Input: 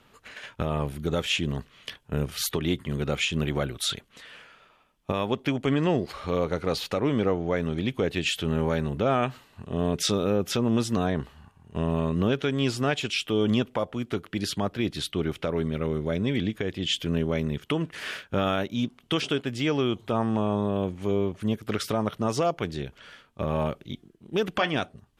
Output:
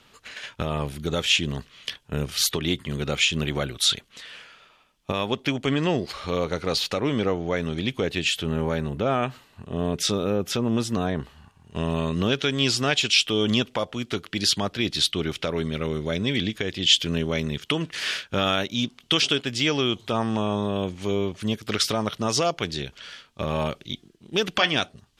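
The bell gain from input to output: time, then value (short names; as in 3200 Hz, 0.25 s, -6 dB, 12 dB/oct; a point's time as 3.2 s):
bell 4900 Hz 2.2 oct
7.95 s +8.5 dB
8.51 s +2 dB
11.17 s +2 dB
11.9 s +12.5 dB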